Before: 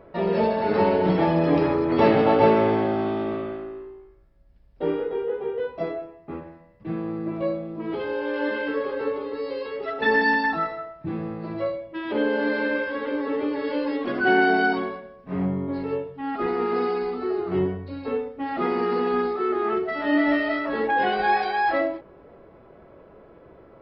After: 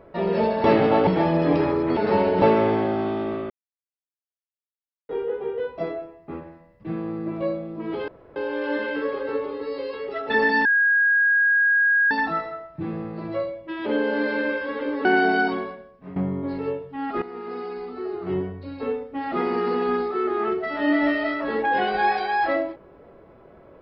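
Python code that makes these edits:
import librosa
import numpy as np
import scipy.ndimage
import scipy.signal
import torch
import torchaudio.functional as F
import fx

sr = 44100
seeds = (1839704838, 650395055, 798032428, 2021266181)

y = fx.edit(x, sr, fx.swap(start_s=0.64, length_s=0.45, other_s=1.99, other_length_s=0.43),
    fx.silence(start_s=3.5, length_s=1.59),
    fx.insert_room_tone(at_s=8.08, length_s=0.28),
    fx.insert_tone(at_s=10.37, length_s=1.46, hz=1640.0, db=-15.5),
    fx.cut(start_s=13.31, length_s=0.99),
    fx.fade_out_to(start_s=15.0, length_s=0.41, floor_db=-14.0),
    fx.fade_in_from(start_s=16.47, length_s=1.72, floor_db=-13.0), tone=tone)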